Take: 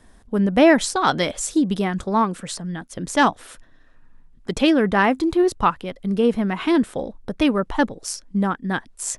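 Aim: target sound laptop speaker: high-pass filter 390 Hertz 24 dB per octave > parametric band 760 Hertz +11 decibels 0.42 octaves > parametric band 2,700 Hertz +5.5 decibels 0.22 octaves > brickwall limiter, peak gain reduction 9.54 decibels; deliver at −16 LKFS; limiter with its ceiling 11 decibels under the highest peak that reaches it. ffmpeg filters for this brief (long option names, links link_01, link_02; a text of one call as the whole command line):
ffmpeg -i in.wav -af "alimiter=limit=-15dB:level=0:latency=1,highpass=frequency=390:width=0.5412,highpass=frequency=390:width=1.3066,equalizer=frequency=760:width_type=o:width=0.42:gain=11,equalizer=frequency=2700:width_type=o:width=0.22:gain=5.5,volume=12.5dB,alimiter=limit=-4.5dB:level=0:latency=1" out.wav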